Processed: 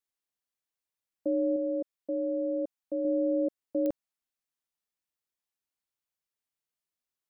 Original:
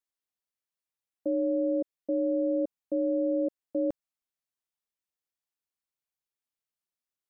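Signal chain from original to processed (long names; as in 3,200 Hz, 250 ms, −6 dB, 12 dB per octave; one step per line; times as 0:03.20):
0:01.56–0:03.05: low-shelf EQ 420 Hz −6.5 dB
digital clicks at 0:03.86, −22 dBFS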